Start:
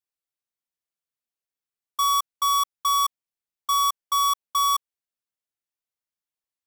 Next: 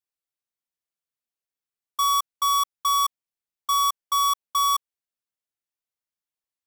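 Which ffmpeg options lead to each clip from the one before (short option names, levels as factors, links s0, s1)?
-af anull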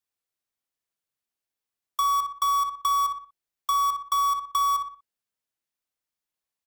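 -filter_complex "[0:a]asplit=2[s0][s1];[s1]adelay=60,lowpass=f=2300:p=1,volume=0.501,asplit=2[s2][s3];[s3]adelay=60,lowpass=f=2300:p=1,volume=0.36,asplit=2[s4][s5];[s5]adelay=60,lowpass=f=2300:p=1,volume=0.36,asplit=2[s6][s7];[s7]adelay=60,lowpass=f=2300:p=1,volume=0.36[s8];[s2][s4][s6][s8]amix=inputs=4:normalize=0[s9];[s0][s9]amix=inputs=2:normalize=0,acrossover=split=740|2300[s10][s11][s12];[s10]acompressor=threshold=0.0112:ratio=4[s13];[s11]acompressor=threshold=0.0447:ratio=4[s14];[s12]acompressor=threshold=0.0141:ratio=4[s15];[s13][s14][s15]amix=inputs=3:normalize=0,volume=1.33"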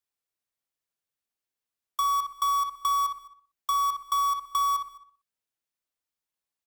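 -filter_complex "[0:a]asplit=2[s0][s1];[s1]adelay=209.9,volume=0.1,highshelf=f=4000:g=-4.72[s2];[s0][s2]amix=inputs=2:normalize=0,volume=0.794"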